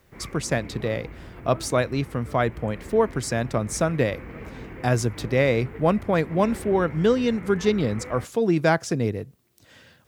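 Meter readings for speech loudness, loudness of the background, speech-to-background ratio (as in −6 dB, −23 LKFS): −24.0 LKFS, −40.5 LKFS, 16.5 dB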